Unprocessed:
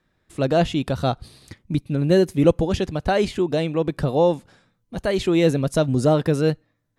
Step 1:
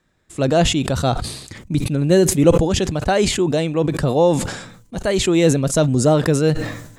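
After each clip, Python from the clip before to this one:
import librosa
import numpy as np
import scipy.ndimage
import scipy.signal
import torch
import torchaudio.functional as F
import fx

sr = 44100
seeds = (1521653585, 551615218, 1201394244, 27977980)

y = fx.peak_eq(x, sr, hz=7400.0, db=9.5, octaves=0.56)
y = fx.sustainer(y, sr, db_per_s=65.0)
y = y * 10.0 ** (2.5 / 20.0)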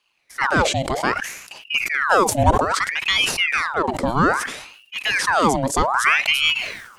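y = fx.ring_lfo(x, sr, carrier_hz=1600.0, swing_pct=75, hz=0.62)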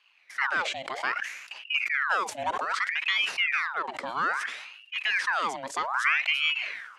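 y = fx.bandpass_q(x, sr, hz=2000.0, q=1.1)
y = fx.band_squash(y, sr, depth_pct=40)
y = y * 10.0 ** (-5.0 / 20.0)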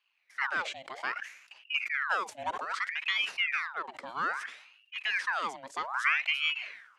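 y = fx.upward_expand(x, sr, threshold_db=-43.0, expansion=1.5)
y = y * 10.0 ** (-2.0 / 20.0)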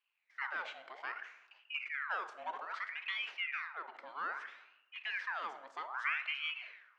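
y = fx.bandpass_edges(x, sr, low_hz=360.0, high_hz=3500.0)
y = fx.rev_plate(y, sr, seeds[0], rt60_s=0.91, hf_ratio=0.6, predelay_ms=0, drr_db=9.5)
y = y * 10.0 ** (-8.0 / 20.0)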